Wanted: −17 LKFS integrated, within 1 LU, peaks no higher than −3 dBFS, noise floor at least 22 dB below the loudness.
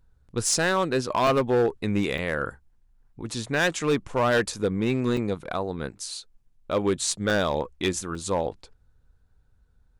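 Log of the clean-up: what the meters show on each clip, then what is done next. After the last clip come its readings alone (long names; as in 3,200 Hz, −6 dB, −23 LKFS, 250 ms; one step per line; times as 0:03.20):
share of clipped samples 1.6%; peaks flattened at −16.5 dBFS; number of dropouts 5; longest dropout 2.4 ms; integrated loudness −26.0 LKFS; sample peak −16.5 dBFS; target loudness −17.0 LKFS
→ clipped peaks rebuilt −16.5 dBFS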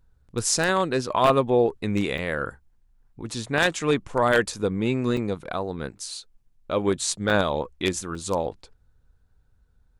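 share of clipped samples 0.0%; number of dropouts 5; longest dropout 2.4 ms
→ repair the gap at 0:01.27/0:02.18/0:05.17/0:07.30/0:08.15, 2.4 ms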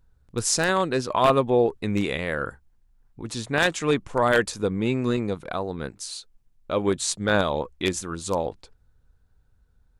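number of dropouts 0; integrated loudness −25.0 LKFS; sample peak −7.5 dBFS; target loudness −17.0 LKFS
→ level +8 dB
brickwall limiter −3 dBFS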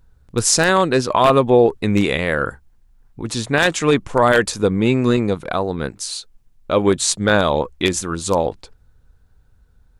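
integrated loudness −17.5 LKFS; sample peak −3.0 dBFS; background noise floor −55 dBFS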